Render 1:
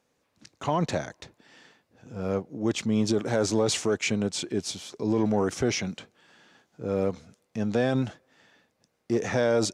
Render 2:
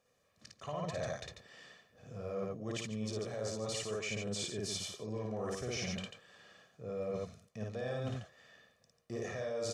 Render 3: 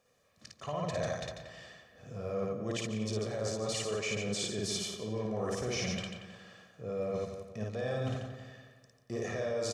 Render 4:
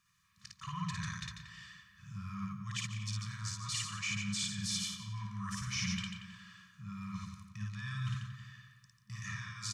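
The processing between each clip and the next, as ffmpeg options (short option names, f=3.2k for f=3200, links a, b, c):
-af "aecho=1:1:1.7:0.64,aecho=1:1:55.39|142.9:0.891|0.447,areverse,acompressor=threshold=-29dB:ratio=12,areverse,volume=-6dB"
-filter_complex "[0:a]asplit=2[a][b];[b]adelay=178,lowpass=f=2.7k:p=1,volume=-8.5dB,asplit=2[c][d];[d]adelay=178,lowpass=f=2.7k:p=1,volume=0.45,asplit=2[e][f];[f]adelay=178,lowpass=f=2.7k:p=1,volume=0.45,asplit=2[g][h];[h]adelay=178,lowpass=f=2.7k:p=1,volume=0.45,asplit=2[i][j];[j]adelay=178,lowpass=f=2.7k:p=1,volume=0.45[k];[a][c][e][g][i][k]amix=inputs=6:normalize=0,volume=3.5dB"
-af "afftfilt=real='re*(1-between(b*sr/4096,210,950))':imag='im*(1-between(b*sr/4096,210,950))':win_size=4096:overlap=0.75"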